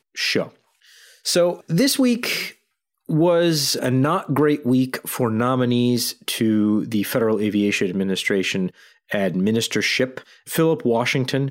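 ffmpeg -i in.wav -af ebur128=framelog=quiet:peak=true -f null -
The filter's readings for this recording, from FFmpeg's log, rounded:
Integrated loudness:
  I:         -20.4 LUFS
  Threshold: -30.8 LUFS
Loudness range:
  LRA:         2.1 LU
  Threshold: -40.6 LUFS
  LRA low:   -21.7 LUFS
  LRA high:  -19.6 LUFS
True peak:
  Peak:       -7.0 dBFS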